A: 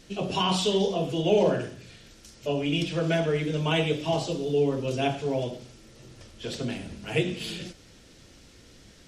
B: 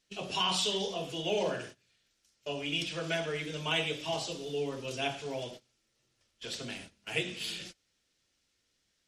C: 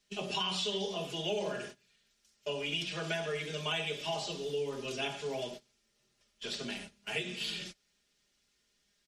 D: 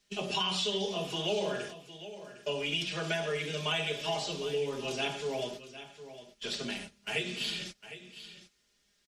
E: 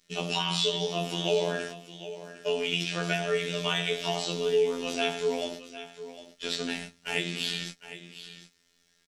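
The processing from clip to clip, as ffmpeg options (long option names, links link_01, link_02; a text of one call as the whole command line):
ffmpeg -i in.wav -af "tiltshelf=frequency=770:gain=-6.5,agate=range=-19dB:threshold=-39dB:ratio=16:detection=peak,volume=-7dB" out.wav
ffmpeg -i in.wav -filter_complex "[0:a]aecho=1:1:4.9:0.65,acrossover=split=150|6500[link_01][link_02][link_03];[link_01]acompressor=threshold=-54dB:ratio=4[link_04];[link_02]acompressor=threshold=-32dB:ratio=4[link_05];[link_03]acompressor=threshold=-56dB:ratio=4[link_06];[link_04][link_05][link_06]amix=inputs=3:normalize=0" out.wav
ffmpeg -i in.wav -af "aecho=1:1:757:0.211,volume=2.5dB" out.wav
ffmpeg -i in.wav -filter_complex "[0:a]afftfilt=real='hypot(re,im)*cos(PI*b)':imag='0':win_size=2048:overlap=0.75,asplit=2[link_01][link_02];[link_02]adelay=16,volume=-10dB[link_03];[link_01][link_03]amix=inputs=2:normalize=0,volume=7dB" out.wav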